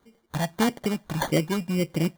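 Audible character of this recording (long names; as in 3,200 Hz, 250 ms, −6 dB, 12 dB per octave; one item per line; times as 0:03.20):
phaser sweep stages 4, 1.7 Hz, lowest notch 370–1,100 Hz
aliases and images of a low sample rate 2,600 Hz, jitter 0%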